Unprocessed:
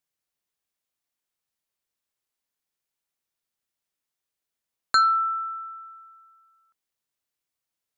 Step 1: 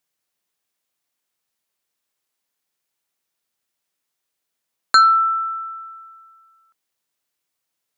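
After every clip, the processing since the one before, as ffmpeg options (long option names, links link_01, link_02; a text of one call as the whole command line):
ffmpeg -i in.wav -af "lowshelf=frequency=84:gain=-11.5,volume=7dB" out.wav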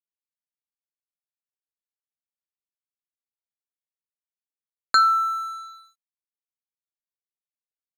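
ffmpeg -i in.wav -af "aeval=exprs='sgn(val(0))*max(abs(val(0))-0.0158,0)':channel_layout=same,volume=-4.5dB" out.wav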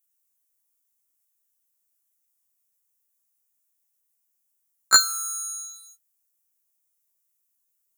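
ffmpeg -i in.wav -filter_complex "[0:a]acrossover=split=190|630|3800[link_01][link_02][link_03][link_04];[link_04]aexciter=amount=6:drive=4.1:freq=5800[link_05];[link_01][link_02][link_03][link_05]amix=inputs=4:normalize=0,afftfilt=real='re*1.73*eq(mod(b,3),0)':imag='im*1.73*eq(mod(b,3),0)':win_size=2048:overlap=0.75,volume=8dB" out.wav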